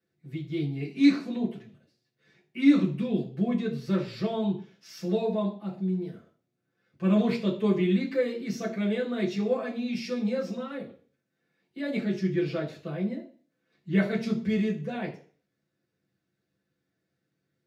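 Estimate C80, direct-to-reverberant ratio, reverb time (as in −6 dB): 15.0 dB, −5.5 dB, 0.45 s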